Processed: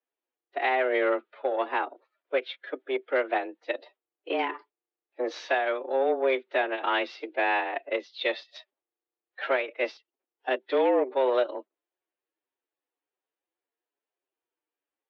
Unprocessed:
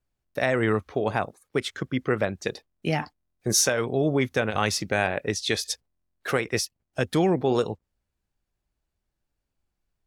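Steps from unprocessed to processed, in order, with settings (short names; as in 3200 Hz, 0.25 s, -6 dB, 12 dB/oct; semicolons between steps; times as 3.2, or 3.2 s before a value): time stretch by phase-locked vocoder 1.5×; added harmonics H 5 -14 dB, 7 -16 dB, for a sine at -9 dBFS; mistuned SSB +130 Hz 190–3500 Hz; gain -3 dB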